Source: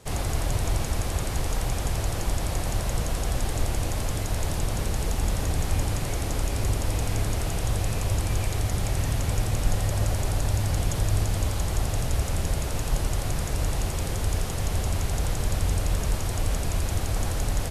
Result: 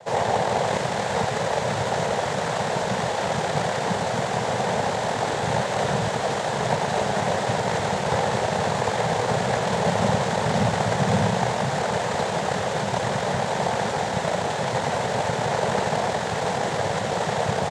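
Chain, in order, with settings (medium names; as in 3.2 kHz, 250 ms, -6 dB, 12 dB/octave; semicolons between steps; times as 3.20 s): sorted samples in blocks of 64 samples; high-order bell 840 Hz +9 dB 1.2 oct; delay 577 ms -9 dB; reverberation RT60 0.90 s, pre-delay 3 ms, DRR 6 dB; noise-vocoded speech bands 6; trim +2 dB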